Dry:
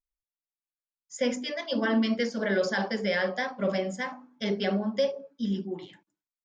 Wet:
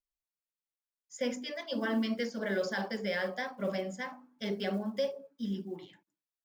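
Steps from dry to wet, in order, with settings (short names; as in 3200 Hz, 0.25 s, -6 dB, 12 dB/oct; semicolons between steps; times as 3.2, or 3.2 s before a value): block floating point 7-bit; gain -6 dB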